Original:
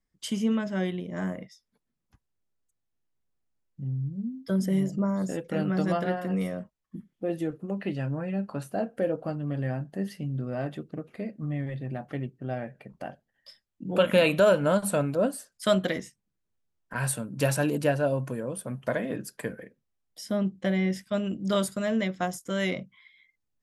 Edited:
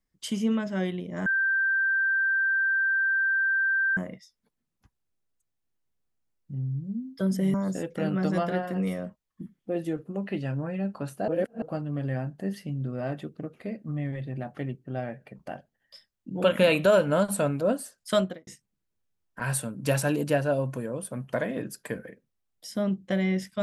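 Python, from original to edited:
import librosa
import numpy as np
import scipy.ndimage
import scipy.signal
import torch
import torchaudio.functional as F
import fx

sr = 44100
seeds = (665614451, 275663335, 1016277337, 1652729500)

y = fx.studio_fade_out(x, sr, start_s=15.66, length_s=0.35)
y = fx.edit(y, sr, fx.insert_tone(at_s=1.26, length_s=2.71, hz=1570.0, db=-21.5),
    fx.cut(start_s=4.83, length_s=0.25),
    fx.reverse_span(start_s=8.82, length_s=0.34), tone=tone)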